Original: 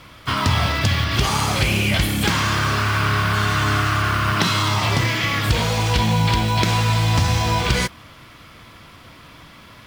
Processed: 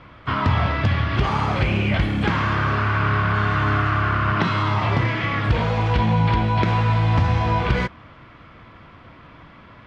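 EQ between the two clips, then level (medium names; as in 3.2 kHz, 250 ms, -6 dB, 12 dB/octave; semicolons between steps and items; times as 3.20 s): low-pass 2 kHz 12 dB/octave; 0.0 dB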